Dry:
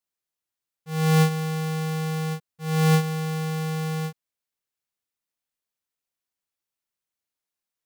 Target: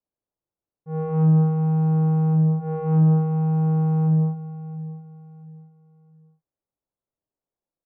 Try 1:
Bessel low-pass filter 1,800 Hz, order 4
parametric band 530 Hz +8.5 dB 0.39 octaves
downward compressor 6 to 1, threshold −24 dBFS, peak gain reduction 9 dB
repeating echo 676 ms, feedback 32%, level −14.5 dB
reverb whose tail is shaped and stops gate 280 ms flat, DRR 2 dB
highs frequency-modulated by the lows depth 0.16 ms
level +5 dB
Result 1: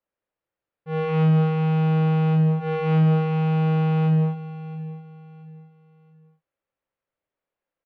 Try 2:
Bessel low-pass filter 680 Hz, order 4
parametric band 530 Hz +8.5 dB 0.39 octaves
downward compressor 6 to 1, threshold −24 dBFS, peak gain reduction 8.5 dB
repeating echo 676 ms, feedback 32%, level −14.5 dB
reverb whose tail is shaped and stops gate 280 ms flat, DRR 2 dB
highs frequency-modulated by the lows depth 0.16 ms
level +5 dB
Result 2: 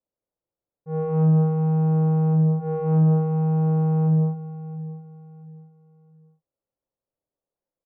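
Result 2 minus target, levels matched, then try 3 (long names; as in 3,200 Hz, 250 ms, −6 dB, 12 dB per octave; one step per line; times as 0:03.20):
500 Hz band +3.5 dB
Bessel low-pass filter 680 Hz, order 4
parametric band 530 Hz +2 dB 0.39 octaves
downward compressor 6 to 1, threshold −24 dBFS, peak gain reduction 7 dB
repeating echo 676 ms, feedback 32%, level −14.5 dB
reverb whose tail is shaped and stops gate 280 ms flat, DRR 2 dB
highs frequency-modulated by the lows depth 0.16 ms
level +5 dB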